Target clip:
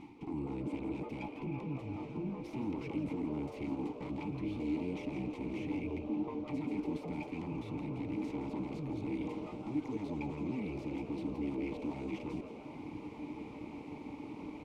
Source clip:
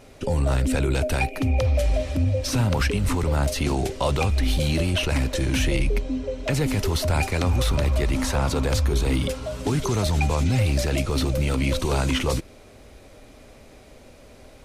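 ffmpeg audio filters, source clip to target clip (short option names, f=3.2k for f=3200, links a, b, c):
-filter_complex "[0:a]aeval=exprs='abs(val(0))':c=same,areverse,acompressor=threshold=-37dB:ratio=5,areverse,alimiter=level_in=8.5dB:limit=-24dB:level=0:latency=1:release=350,volume=-8.5dB,asplit=3[a][b][c];[a]bandpass=f=300:t=q:w=8,volume=0dB[d];[b]bandpass=f=870:t=q:w=8,volume=-6dB[e];[c]bandpass=f=2.24k:t=q:w=8,volume=-9dB[f];[d][e][f]amix=inputs=3:normalize=0,bass=f=250:g=14,treble=f=4k:g=2,asplit=2[g][h];[h]asplit=5[i][j][k][l][m];[i]adelay=167,afreqshift=150,volume=-11dB[n];[j]adelay=334,afreqshift=300,volume=-17.6dB[o];[k]adelay=501,afreqshift=450,volume=-24.1dB[p];[l]adelay=668,afreqshift=600,volume=-30.7dB[q];[m]adelay=835,afreqshift=750,volume=-37.2dB[r];[n][o][p][q][r]amix=inputs=5:normalize=0[s];[g][s]amix=inputs=2:normalize=0,volume=13.5dB"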